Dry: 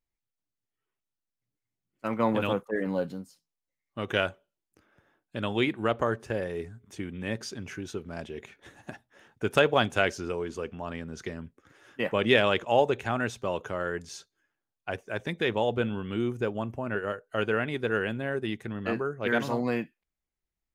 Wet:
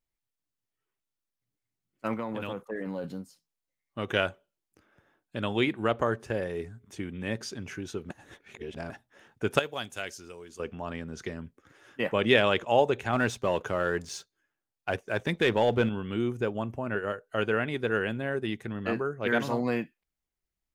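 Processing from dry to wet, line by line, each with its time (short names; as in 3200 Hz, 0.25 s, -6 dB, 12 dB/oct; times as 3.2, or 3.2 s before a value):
2.15–3.04 compressor 5:1, threshold -30 dBFS
8.1–8.9 reverse
9.59–10.6 pre-emphasis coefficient 0.8
13.13–15.89 sample leveller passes 1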